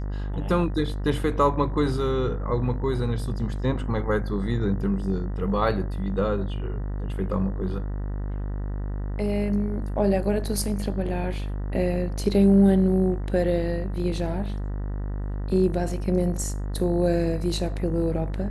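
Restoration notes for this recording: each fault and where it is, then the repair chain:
mains buzz 50 Hz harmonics 39 −29 dBFS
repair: hum removal 50 Hz, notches 39

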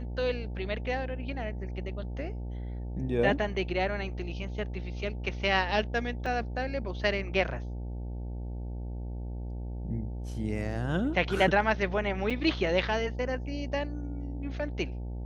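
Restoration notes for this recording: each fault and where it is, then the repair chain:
mains buzz 60 Hz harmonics 15 −36 dBFS
0:06.26: drop-out 3.4 ms
0:12.30–0:12.31: drop-out 5.7 ms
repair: hum removal 60 Hz, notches 15
repair the gap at 0:06.26, 3.4 ms
repair the gap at 0:12.30, 5.7 ms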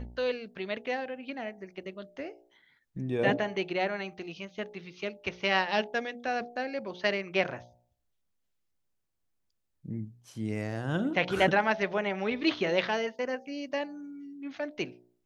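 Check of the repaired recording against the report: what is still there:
none of them is left

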